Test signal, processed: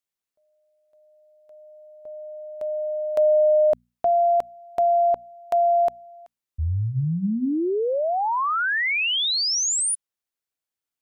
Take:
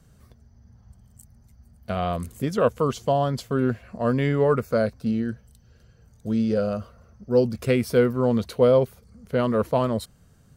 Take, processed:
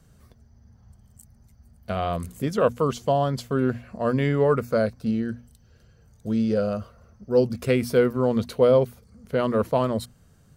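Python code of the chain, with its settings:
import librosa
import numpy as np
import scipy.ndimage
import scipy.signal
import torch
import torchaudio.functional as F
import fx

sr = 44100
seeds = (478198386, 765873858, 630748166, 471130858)

y = fx.hum_notches(x, sr, base_hz=60, count=4)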